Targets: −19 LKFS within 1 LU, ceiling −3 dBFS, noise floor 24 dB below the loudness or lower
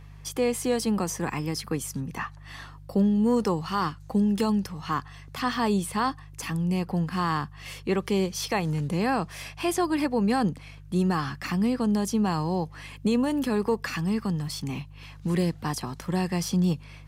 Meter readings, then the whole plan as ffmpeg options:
mains hum 50 Hz; hum harmonics up to 150 Hz; level of the hum −43 dBFS; integrated loudness −27.5 LKFS; sample peak −13.5 dBFS; target loudness −19.0 LKFS
→ -af "bandreject=frequency=50:width_type=h:width=4,bandreject=frequency=100:width_type=h:width=4,bandreject=frequency=150:width_type=h:width=4"
-af "volume=8.5dB"

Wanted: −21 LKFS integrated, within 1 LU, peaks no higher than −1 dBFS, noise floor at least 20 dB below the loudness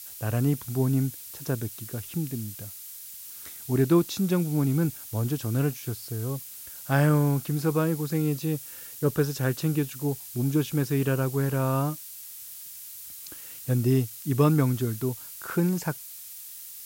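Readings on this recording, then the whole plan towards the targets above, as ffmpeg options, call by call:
background noise floor −42 dBFS; target noise floor −47 dBFS; integrated loudness −27.0 LKFS; sample peak −9.5 dBFS; target loudness −21.0 LKFS
→ -af "afftdn=noise_reduction=6:noise_floor=-42"
-af "volume=6dB"

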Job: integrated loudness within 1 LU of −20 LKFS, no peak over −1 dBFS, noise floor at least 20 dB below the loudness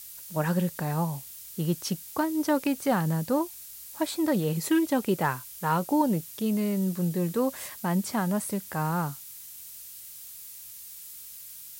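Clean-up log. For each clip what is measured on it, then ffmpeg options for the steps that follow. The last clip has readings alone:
background noise floor −45 dBFS; target noise floor −48 dBFS; integrated loudness −28.0 LKFS; sample peak −13.0 dBFS; target loudness −20.0 LKFS
→ -af "afftdn=noise_reduction=6:noise_floor=-45"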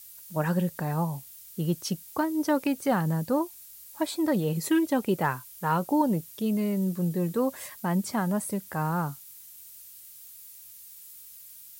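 background noise floor −48 dBFS; target noise floor −49 dBFS
→ -af "afftdn=noise_reduction=6:noise_floor=-48"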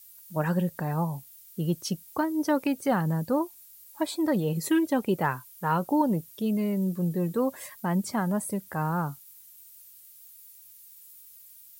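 background noise floor −52 dBFS; integrated loudness −28.5 LKFS; sample peak −12.5 dBFS; target loudness −20.0 LKFS
→ -af "volume=8.5dB"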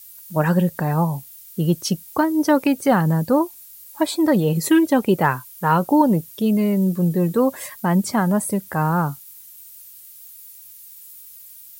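integrated loudness −20.0 LKFS; sample peak −4.0 dBFS; background noise floor −43 dBFS

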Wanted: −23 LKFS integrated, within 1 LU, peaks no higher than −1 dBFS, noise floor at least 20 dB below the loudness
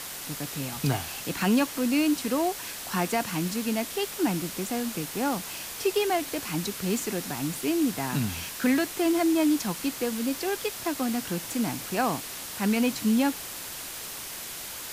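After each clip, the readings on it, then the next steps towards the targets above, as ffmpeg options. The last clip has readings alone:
background noise floor −38 dBFS; target noise floor −48 dBFS; integrated loudness −28.0 LKFS; sample peak −13.0 dBFS; target loudness −23.0 LKFS
→ -af "afftdn=noise_reduction=10:noise_floor=-38"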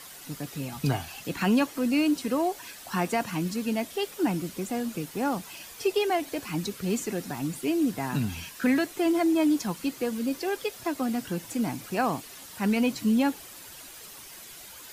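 background noise floor −46 dBFS; target noise floor −49 dBFS
→ -af "afftdn=noise_reduction=6:noise_floor=-46"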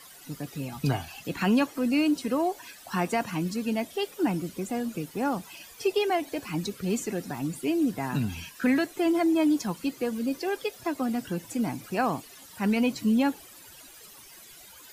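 background noise floor −50 dBFS; integrated loudness −28.5 LKFS; sample peak −14.0 dBFS; target loudness −23.0 LKFS
→ -af "volume=5.5dB"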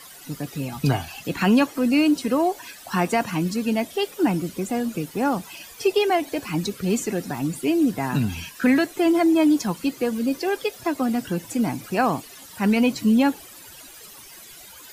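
integrated loudness −23.0 LKFS; sample peak −8.5 dBFS; background noise floor −44 dBFS

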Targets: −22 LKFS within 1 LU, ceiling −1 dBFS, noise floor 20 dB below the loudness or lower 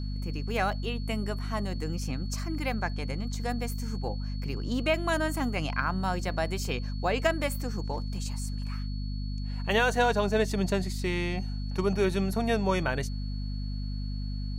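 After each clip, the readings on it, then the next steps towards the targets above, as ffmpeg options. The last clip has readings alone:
mains hum 50 Hz; hum harmonics up to 250 Hz; level of the hum −30 dBFS; interfering tone 4,400 Hz; level of the tone −48 dBFS; integrated loudness −30.5 LKFS; sample peak −12.5 dBFS; target loudness −22.0 LKFS
→ -af "bandreject=frequency=50:width_type=h:width=4,bandreject=frequency=100:width_type=h:width=4,bandreject=frequency=150:width_type=h:width=4,bandreject=frequency=200:width_type=h:width=4,bandreject=frequency=250:width_type=h:width=4"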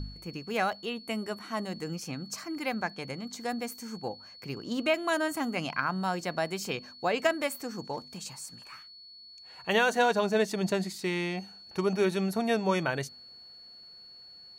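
mains hum none found; interfering tone 4,400 Hz; level of the tone −48 dBFS
→ -af "bandreject=frequency=4400:width=30"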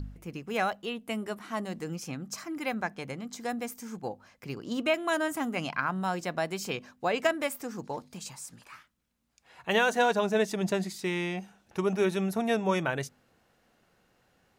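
interfering tone none found; integrated loudness −31.0 LKFS; sample peak −12.5 dBFS; target loudness −22.0 LKFS
→ -af "volume=9dB"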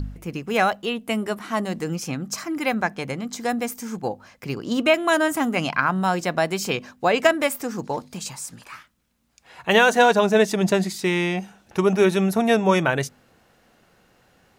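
integrated loudness −22.0 LKFS; sample peak −3.5 dBFS; background noise floor −60 dBFS

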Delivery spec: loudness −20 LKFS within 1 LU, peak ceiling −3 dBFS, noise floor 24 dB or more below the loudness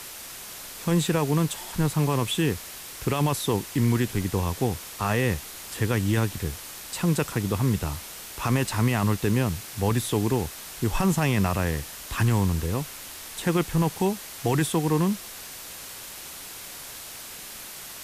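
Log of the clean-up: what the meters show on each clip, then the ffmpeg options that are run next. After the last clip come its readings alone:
background noise floor −40 dBFS; target noise floor −50 dBFS; integrated loudness −26.0 LKFS; sample peak −12.0 dBFS; target loudness −20.0 LKFS
→ -af "afftdn=noise_reduction=10:noise_floor=-40"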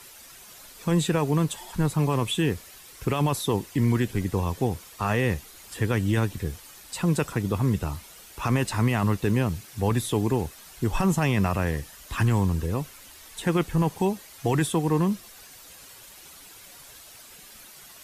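background noise floor −48 dBFS; target noise floor −50 dBFS
→ -af "afftdn=noise_reduction=6:noise_floor=-48"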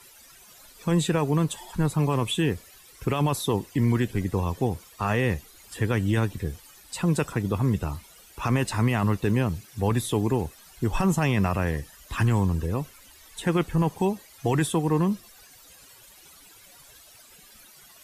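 background noise floor −52 dBFS; integrated loudness −26.0 LKFS; sample peak −12.0 dBFS; target loudness −20.0 LKFS
→ -af "volume=6dB"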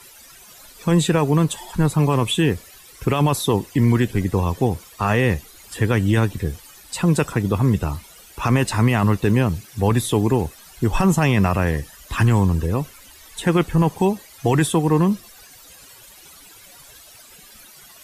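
integrated loudness −20.0 LKFS; sample peak −6.0 dBFS; background noise floor −46 dBFS

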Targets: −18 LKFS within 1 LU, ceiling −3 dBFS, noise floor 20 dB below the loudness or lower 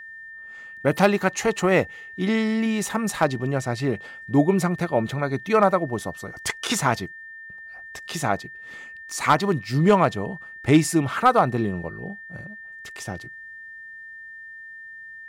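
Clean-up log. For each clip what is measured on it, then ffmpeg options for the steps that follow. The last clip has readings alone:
interfering tone 1,800 Hz; level of the tone −38 dBFS; integrated loudness −23.0 LKFS; sample peak −6.5 dBFS; target loudness −18.0 LKFS
→ -af "bandreject=frequency=1800:width=30"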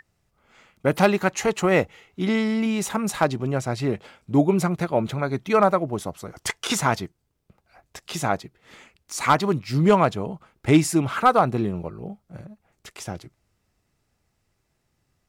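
interfering tone none found; integrated loudness −22.5 LKFS; sample peak −6.5 dBFS; target loudness −18.0 LKFS
→ -af "volume=4.5dB,alimiter=limit=-3dB:level=0:latency=1"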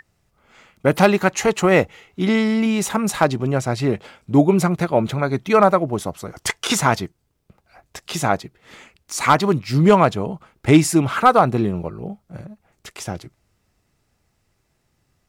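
integrated loudness −18.5 LKFS; sample peak −3.0 dBFS; background noise floor −68 dBFS

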